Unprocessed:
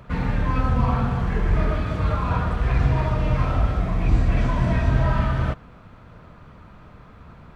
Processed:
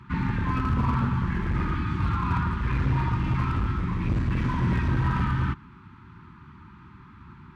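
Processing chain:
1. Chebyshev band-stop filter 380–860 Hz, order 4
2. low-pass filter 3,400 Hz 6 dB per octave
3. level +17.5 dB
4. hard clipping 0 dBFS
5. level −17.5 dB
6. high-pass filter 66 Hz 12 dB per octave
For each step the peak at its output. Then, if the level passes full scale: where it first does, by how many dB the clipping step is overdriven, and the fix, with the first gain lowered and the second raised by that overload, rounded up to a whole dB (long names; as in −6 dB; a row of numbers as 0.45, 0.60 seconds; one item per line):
−8.0, −8.0, +9.5, 0.0, −17.5, −13.0 dBFS
step 3, 9.5 dB
step 3 +7.5 dB, step 5 −7.5 dB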